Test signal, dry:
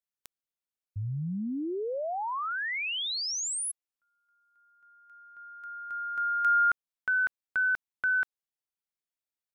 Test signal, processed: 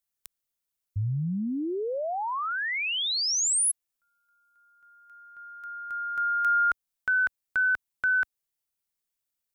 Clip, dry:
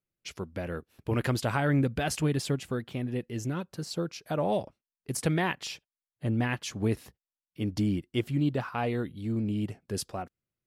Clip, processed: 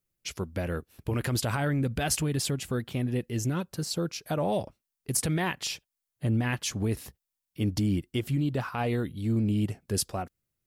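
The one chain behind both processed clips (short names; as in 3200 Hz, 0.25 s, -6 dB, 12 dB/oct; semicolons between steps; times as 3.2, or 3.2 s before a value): low shelf 84 Hz +9 dB; limiter -22 dBFS; high shelf 6200 Hz +9 dB; gain +2 dB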